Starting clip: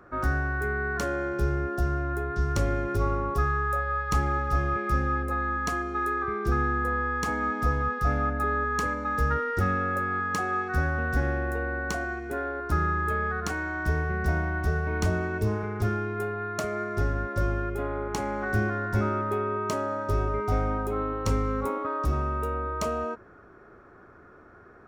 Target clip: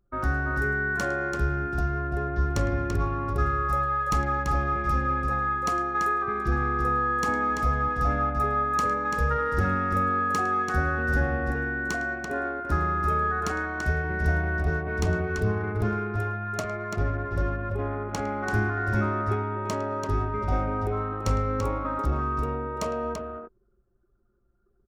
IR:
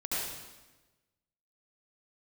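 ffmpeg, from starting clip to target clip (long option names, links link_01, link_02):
-af "aecho=1:1:47|107|337:0.141|0.178|0.531,anlmdn=6.31"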